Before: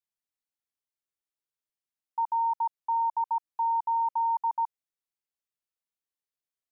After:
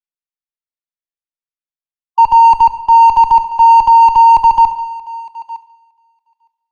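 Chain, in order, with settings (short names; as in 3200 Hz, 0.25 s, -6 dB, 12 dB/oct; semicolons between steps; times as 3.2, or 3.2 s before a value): switching dead time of 0.068 ms; reverb removal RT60 0.85 s; spectral gate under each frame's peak -25 dB strong; tilt shelf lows -4.5 dB, about 1100 Hz; in parallel at -9 dB: Schmitt trigger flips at -37.5 dBFS; on the sum: air absorption 160 m; thinning echo 0.911 s, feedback 16%, high-pass 680 Hz, level -14.5 dB; on a send at -13 dB: reverb RT60 1.5 s, pre-delay 5 ms; on the sum: maximiser +28.5 dB; three-band expander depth 70%; gain -1 dB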